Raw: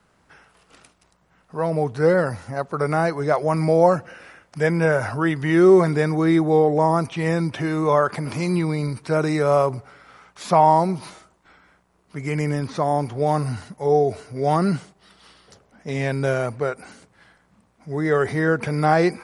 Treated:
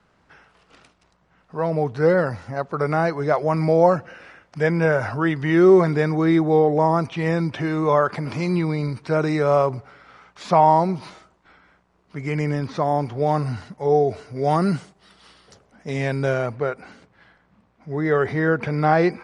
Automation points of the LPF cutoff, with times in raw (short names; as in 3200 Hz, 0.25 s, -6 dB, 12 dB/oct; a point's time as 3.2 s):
14.12 s 5400 Hz
14.7 s 9700 Hz
15.93 s 9700 Hz
16.62 s 4000 Hz